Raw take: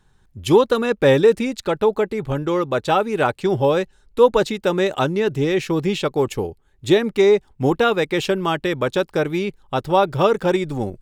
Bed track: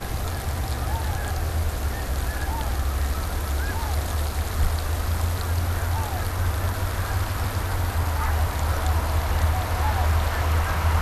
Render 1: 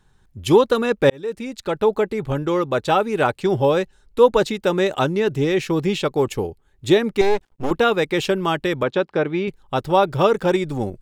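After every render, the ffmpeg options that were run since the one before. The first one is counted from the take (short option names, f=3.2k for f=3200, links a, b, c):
-filter_complex "[0:a]asettb=1/sr,asplit=3[a][b][c];[a]atrim=end=7.214[d];[b]atrim=start=7.21:end=7.71,asetpts=PTS-STARTPTS,afade=t=in:d=0.004:c=qsin,afade=t=out:st=0.496:d=0.004:c=qsin,aeval=exprs='max(val(0),0)':c=same[e];[c]atrim=start=7.706[f];[d][e]acrossfade=d=0.004:c1=hsin:c2=qsin[g];[g][f]acrossfade=d=0.004:c1=qsin:c2=hsin,asettb=1/sr,asplit=3[h][i][j];[h]atrim=end=8.834[k];[i]atrim=start=8.83:end=9.48,asetpts=PTS-STARTPTS,afade=t=in:d=0.004:c=qsin,afade=t=out:st=0.646:d=0.004:c=qsin,highpass=130,lowpass=3.2k[l];[j]atrim=start=9.476[m];[k][l]acrossfade=d=0.004:c1=hsin:c2=qsin[n];[n][m]acrossfade=d=0.004:c1=qsin:c2=hsin,asplit=2[o][p];[o]atrim=end=1.1,asetpts=PTS-STARTPTS,afade=t=out:st=1.096:d=0.004:c=hsin[q];[p]atrim=start=1.1,asetpts=PTS-STARTPTS,afade=t=in:d=0.79[r];[q][r]concat=n=2:v=0:a=1"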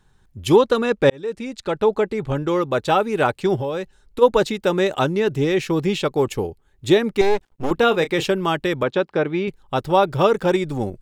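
-filter_complex "[0:a]asettb=1/sr,asplit=3[a][b][c];[a]atrim=end=0.564[d];[b]atrim=start=0.56:end=2.47,asetpts=PTS-STARTPTS,afade=t=in:d=0.004:c=qsin,afade=t=out:st=1.906:d=0.004:c=qsin,lowpass=9.4k[e];[c]atrim=start=2.466[f];[d][e]acrossfade=d=0.004:c1=hsin:c2=qsin[g];[g][f]acrossfade=d=0.004:c1=qsin:c2=hsin,asplit=3[h][i][j];[h]afade=t=out:st=3.55:d=0.02[k];[i]acompressor=threshold=-22dB:ratio=5:attack=3.2:release=140:knee=1:detection=peak,afade=t=in:st=3.55:d=0.02,afade=t=out:st=4.21:d=0.02[l];[j]afade=t=in:st=4.21:d=0.02[m];[k][l][m]amix=inputs=3:normalize=0,asettb=1/sr,asplit=3[n][o][p];[n]atrim=end=7.754[q];[o]atrim=start=7.75:end=8.27,asetpts=PTS-STARTPTS,afade=t=in:d=0.004:c=qsin,afade=t=out:st=0.516:d=0.004:c=qsin,asplit=2[r][s];[s]adelay=30,volume=-11.5dB[t];[r][t]amix=inputs=2:normalize=0,atrim=end_sample=22932[u];[p]atrim=start=8.266[v];[q][u]acrossfade=d=0.004:c1=hsin:c2=qsin[w];[w][v]acrossfade=d=0.004:c1=qsin:c2=hsin"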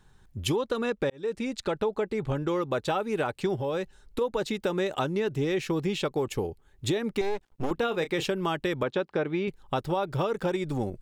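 -af "alimiter=limit=-9.5dB:level=0:latency=1:release=163,acompressor=threshold=-27dB:ratio=3"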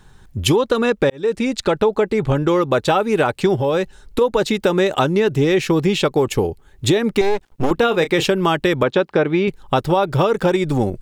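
-af "volume=11.5dB"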